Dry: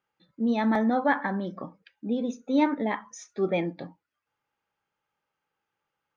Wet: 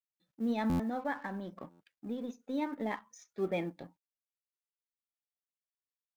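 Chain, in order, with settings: companding laws mixed up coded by A; 0.74–2.81 s: compression 1.5:1, threshold -33 dBFS, peak gain reduction 5.5 dB; buffer glitch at 0.69/1.70 s, samples 512, times 8; trim -6.5 dB

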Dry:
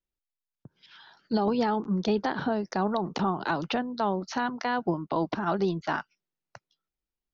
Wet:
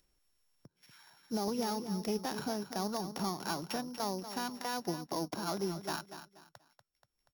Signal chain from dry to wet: sorted samples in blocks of 8 samples; on a send: feedback delay 240 ms, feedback 29%, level -11 dB; on the sum: upward compressor, threshold -46 dBFS; trim -9 dB

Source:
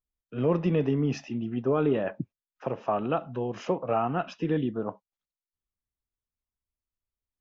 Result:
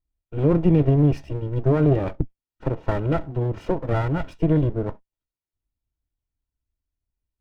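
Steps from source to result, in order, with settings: comb filter that takes the minimum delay 2.1 ms; tone controls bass +14 dB, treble -5 dB; small resonant body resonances 280/670 Hz, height 11 dB, ringing for 35 ms; trim -1.5 dB

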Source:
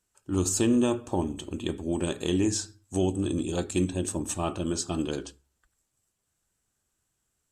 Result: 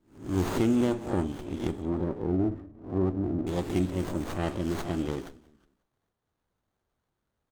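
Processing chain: reverse spectral sustain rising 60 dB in 0.43 s; 1.82–3.47 s: inverse Chebyshev low-pass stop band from 3.7 kHz, stop band 60 dB; frequency-shifting echo 183 ms, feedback 36%, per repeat -31 Hz, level -21 dB; sliding maximum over 17 samples; trim -2 dB

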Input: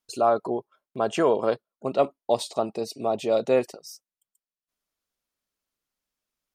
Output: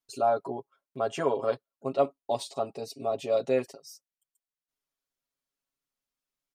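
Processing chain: comb 7.3 ms, depth 94%; trim -8 dB

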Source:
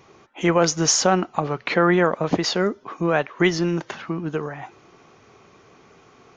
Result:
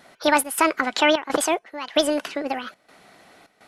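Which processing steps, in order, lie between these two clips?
trance gate "xxx.xxxx.xx..xxx" 60 bpm -12 dB; speed mistake 45 rpm record played at 78 rpm; small resonant body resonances 1.5/3 kHz, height 7 dB

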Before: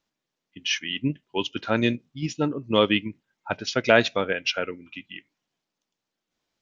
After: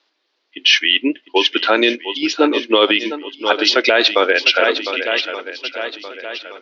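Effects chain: elliptic band-pass 330–4500 Hz, stop band 40 dB; treble shelf 3.4 kHz +9.5 dB; on a send: shuffle delay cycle 1173 ms, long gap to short 1.5:1, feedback 36%, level -14 dB; on the sum: loudness maximiser +15.5 dB; trim -1 dB

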